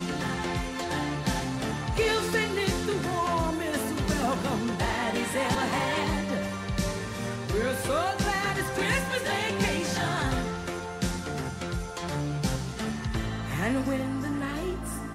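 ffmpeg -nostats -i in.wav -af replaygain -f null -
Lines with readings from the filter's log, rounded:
track_gain = +10.7 dB
track_peak = 0.140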